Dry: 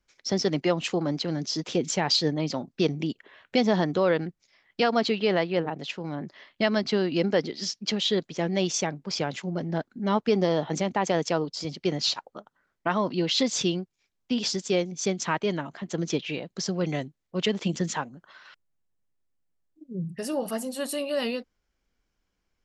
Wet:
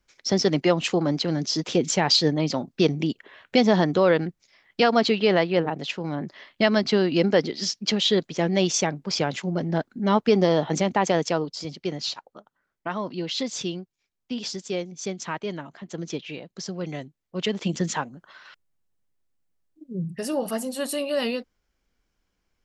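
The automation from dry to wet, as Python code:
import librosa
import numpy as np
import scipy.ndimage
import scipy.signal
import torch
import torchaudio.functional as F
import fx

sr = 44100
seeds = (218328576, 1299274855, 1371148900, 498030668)

y = fx.gain(x, sr, db=fx.line((10.99, 4.0), (12.11, -4.0), (17.01, -4.0), (17.86, 2.5)))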